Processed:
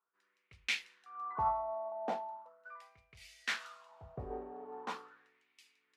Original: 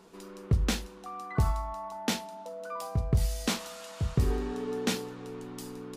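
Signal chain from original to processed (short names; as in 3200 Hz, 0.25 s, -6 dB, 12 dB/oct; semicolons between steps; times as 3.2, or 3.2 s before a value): wah 0.4 Hz 630–2300 Hz, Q 4.6; three-band expander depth 100%; gain +3.5 dB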